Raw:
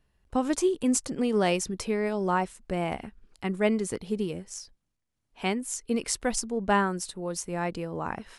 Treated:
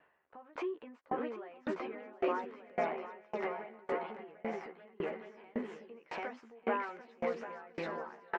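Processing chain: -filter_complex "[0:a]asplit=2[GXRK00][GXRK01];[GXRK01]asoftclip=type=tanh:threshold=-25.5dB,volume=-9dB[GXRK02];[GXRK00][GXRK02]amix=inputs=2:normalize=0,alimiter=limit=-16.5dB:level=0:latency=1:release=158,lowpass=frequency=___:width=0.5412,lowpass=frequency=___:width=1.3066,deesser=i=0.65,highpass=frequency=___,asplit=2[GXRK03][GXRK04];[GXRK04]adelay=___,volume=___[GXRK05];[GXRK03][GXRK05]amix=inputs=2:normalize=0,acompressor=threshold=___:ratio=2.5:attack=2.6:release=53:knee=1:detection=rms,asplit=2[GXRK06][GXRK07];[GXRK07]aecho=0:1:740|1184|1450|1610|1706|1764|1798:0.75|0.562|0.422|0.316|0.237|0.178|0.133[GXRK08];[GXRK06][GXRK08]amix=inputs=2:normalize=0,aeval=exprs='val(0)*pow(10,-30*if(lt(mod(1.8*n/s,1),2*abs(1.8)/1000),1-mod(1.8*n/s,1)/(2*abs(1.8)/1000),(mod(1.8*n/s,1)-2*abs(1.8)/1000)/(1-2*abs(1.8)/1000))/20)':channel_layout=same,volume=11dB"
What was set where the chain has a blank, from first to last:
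2100, 2100, 540, 13, -2.5dB, -46dB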